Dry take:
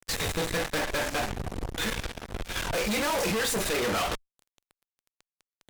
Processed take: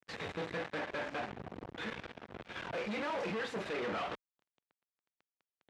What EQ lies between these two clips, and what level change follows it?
band-pass filter 140–2,700 Hz
−8.5 dB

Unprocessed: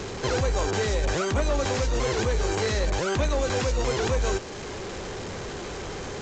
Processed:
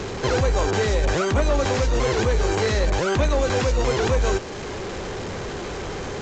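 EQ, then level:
high-shelf EQ 4,900 Hz −5.5 dB
+4.5 dB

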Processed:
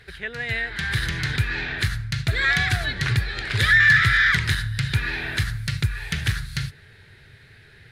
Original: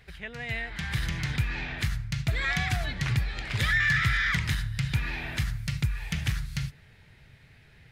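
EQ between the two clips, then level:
graphic EQ with 15 bands 100 Hz +7 dB, 400 Hz +10 dB, 1,600 Hz +11 dB, 4,000 Hz +9 dB, 10,000 Hz +8 dB
0.0 dB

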